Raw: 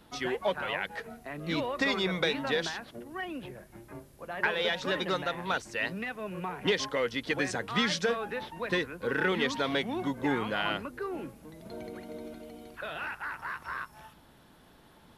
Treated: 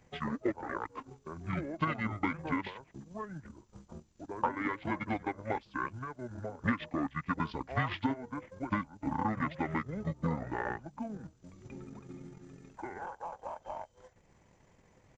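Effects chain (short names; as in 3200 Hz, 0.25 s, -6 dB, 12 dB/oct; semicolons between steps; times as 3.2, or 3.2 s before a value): pitch shift -9.5 st; transient shaper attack +4 dB, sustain -8 dB; gain -5 dB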